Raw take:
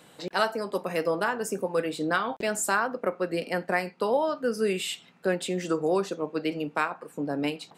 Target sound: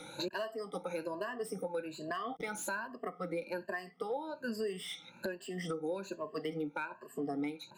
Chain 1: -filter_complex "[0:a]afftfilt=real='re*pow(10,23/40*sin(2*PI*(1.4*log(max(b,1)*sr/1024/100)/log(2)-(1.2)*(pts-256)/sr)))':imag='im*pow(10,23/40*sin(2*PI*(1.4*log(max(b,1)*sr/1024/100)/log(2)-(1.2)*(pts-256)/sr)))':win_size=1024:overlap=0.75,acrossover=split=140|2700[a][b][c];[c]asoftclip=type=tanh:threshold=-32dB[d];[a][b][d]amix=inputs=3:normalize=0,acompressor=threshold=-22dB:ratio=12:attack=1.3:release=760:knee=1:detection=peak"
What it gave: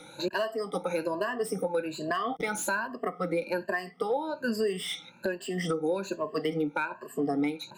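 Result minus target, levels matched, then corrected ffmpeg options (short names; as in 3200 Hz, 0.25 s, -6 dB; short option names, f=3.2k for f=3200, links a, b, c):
compressor: peak gain reduction -8 dB
-filter_complex "[0:a]afftfilt=real='re*pow(10,23/40*sin(2*PI*(1.4*log(max(b,1)*sr/1024/100)/log(2)-(1.2)*(pts-256)/sr)))':imag='im*pow(10,23/40*sin(2*PI*(1.4*log(max(b,1)*sr/1024/100)/log(2)-(1.2)*(pts-256)/sr)))':win_size=1024:overlap=0.75,acrossover=split=140|2700[a][b][c];[c]asoftclip=type=tanh:threshold=-32dB[d];[a][b][d]amix=inputs=3:normalize=0,acompressor=threshold=-31dB:ratio=12:attack=1.3:release=760:knee=1:detection=peak"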